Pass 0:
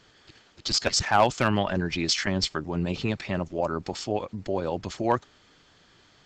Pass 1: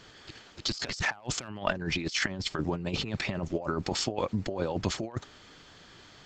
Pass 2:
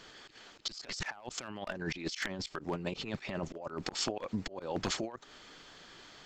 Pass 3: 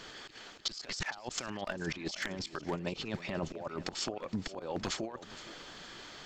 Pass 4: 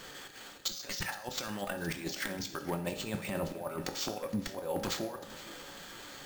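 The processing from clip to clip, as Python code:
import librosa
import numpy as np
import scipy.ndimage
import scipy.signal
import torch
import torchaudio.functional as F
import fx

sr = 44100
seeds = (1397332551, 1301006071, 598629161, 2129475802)

y1 = fx.over_compress(x, sr, threshold_db=-31.0, ratio=-0.5)
y2 = np.minimum(y1, 2.0 * 10.0 ** (-19.5 / 20.0) - y1)
y2 = fx.peak_eq(y2, sr, hz=85.0, db=-10.0, octaves=2.0)
y2 = fx.auto_swell(y2, sr, attack_ms=158.0)
y3 = fx.rider(y2, sr, range_db=5, speed_s=0.5)
y3 = fx.echo_feedback(y3, sr, ms=466, feedback_pct=37, wet_db=-16.0)
y4 = fx.rev_fdn(y3, sr, rt60_s=0.66, lf_ratio=0.8, hf_ratio=0.9, size_ms=11.0, drr_db=5.0)
y4 = np.repeat(y4[::4], 4)[:len(y4)]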